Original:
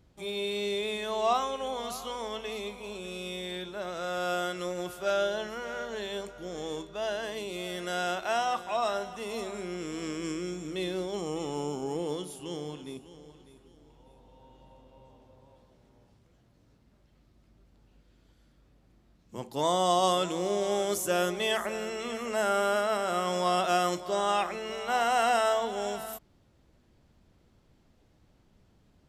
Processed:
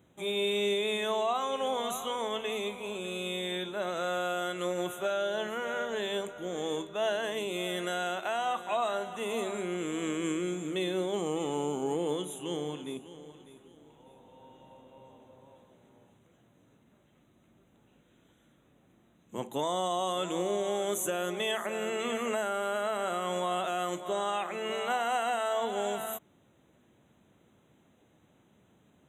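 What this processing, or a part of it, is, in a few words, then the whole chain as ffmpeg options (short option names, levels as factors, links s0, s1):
PA system with an anti-feedback notch: -af "highpass=150,asuperstop=centerf=4900:order=20:qfactor=2.5,alimiter=limit=0.0631:level=0:latency=1:release=260,volume=1.41"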